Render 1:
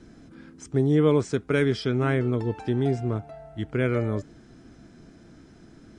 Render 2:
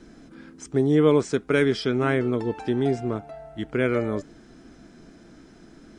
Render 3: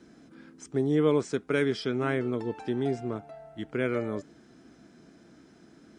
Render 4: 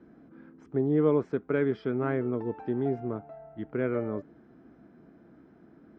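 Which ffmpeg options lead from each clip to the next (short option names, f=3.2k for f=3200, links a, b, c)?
-af "equalizer=f=100:t=o:w=1.1:g=-10,volume=3dB"
-af "highpass=89,volume=-5.5dB"
-af "lowpass=1.4k"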